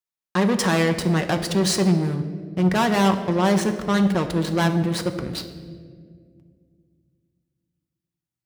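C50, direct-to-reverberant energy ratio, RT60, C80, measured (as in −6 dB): 10.0 dB, 5.5 dB, 2.0 s, 11.5 dB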